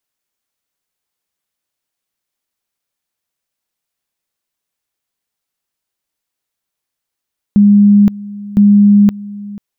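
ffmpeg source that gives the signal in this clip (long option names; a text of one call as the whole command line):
ffmpeg -f lavfi -i "aevalsrc='pow(10,(-3.5-20*gte(mod(t,1.01),0.52))/20)*sin(2*PI*204*t)':duration=2.02:sample_rate=44100" out.wav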